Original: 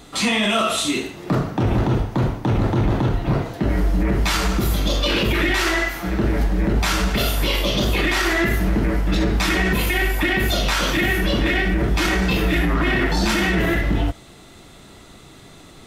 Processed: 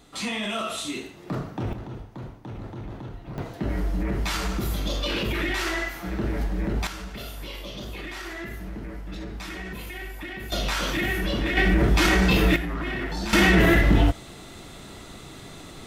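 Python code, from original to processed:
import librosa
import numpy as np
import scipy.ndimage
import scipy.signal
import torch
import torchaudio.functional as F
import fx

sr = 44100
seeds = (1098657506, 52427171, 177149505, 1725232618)

y = fx.gain(x, sr, db=fx.steps((0.0, -10.0), (1.73, -18.0), (3.38, -7.5), (6.87, -16.5), (10.52, -6.5), (11.57, 0.0), (12.56, -10.5), (13.33, 2.0)))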